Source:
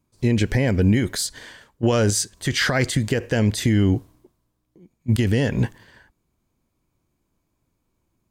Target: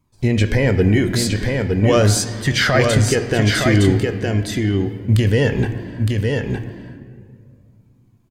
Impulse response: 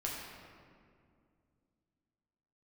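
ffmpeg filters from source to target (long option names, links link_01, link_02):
-filter_complex "[0:a]asplit=2[link_01][link_02];[1:a]atrim=start_sample=2205,lowpass=6000[link_03];[link_02][link_03]afir=irnorm=-1:irlink=0,volume=-7dB[link_04];[link_01][link_04]amix=inputs=2:normalize=0,flanger=delay=0.9:depth=2.2:regen=43:speed=0.42:shape=triangular,asplit=2[link_05][link_06];[link_06]aecho=0:1:913:0.631[link_07];[link_05][link_07]amix=inputs=2:normalize=0,volume=5.5dB"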